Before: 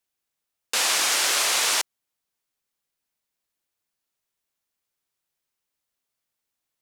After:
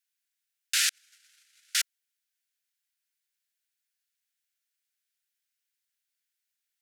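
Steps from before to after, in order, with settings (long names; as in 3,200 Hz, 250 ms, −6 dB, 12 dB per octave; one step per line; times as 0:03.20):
Butterworth high-pass 1,400 Hz 96 dB per octave
0:00.89–0:01.75: noise gate −17 dBFS, range −49 dB
level −1.5 dB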